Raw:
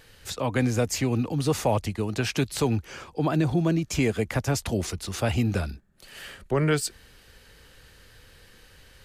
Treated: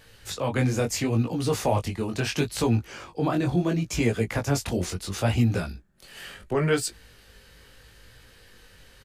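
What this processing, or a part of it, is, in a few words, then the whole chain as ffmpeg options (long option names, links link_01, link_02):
double-tracked vocal: -filter_complex "[0:a]asplit=2[link_01][link_02];[link_02]adelay=17,volume=-14dB[link_03];[link_01][link_03]amix=inputs=2:normalize=0,flanger=delay=17:depth=5.7:speed=0.73,volume=3dB"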